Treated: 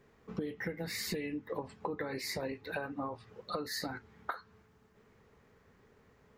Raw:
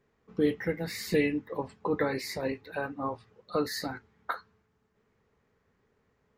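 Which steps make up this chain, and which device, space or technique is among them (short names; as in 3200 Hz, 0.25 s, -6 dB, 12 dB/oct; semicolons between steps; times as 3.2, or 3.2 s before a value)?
serial compression, leveller first (compressor 3:1, threshold -29 dBFS, peak gain reduction 7 dB; compressor 6:1, threshold -43 dBFS, peak gain reduction 15.5 dB); gain +7.5 dB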